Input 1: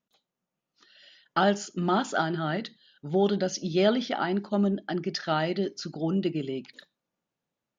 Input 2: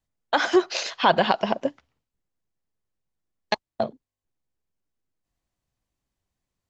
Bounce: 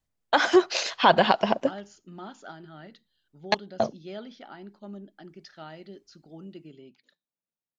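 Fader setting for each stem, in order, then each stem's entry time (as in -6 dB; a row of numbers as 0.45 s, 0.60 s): -16.5 dB, +0.5 dB; 0.30 s, 0.00 s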